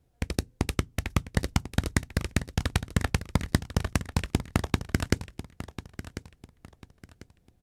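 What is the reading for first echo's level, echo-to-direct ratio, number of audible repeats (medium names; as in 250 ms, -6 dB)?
-13.0 dB, -12.5 dB, 3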